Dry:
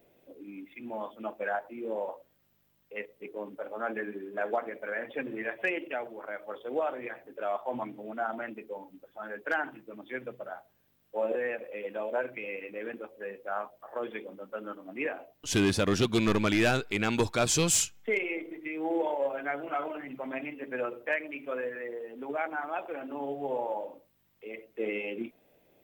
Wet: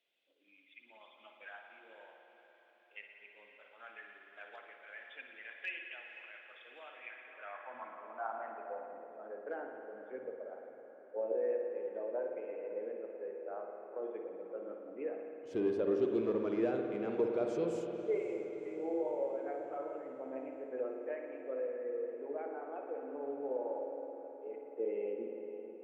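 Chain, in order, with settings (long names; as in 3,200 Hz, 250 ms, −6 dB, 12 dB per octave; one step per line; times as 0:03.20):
feedback delay with all-pass diffusion 531 ms, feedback 61%, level −13 dB
band-pass filter sweep 3,300 Hz → 450 Hz, 0:06.84–0:09.10
spring reverb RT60 2.6 s, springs 53 ms, chirp 55 ms, DRR 2.5 dB
level −3 dB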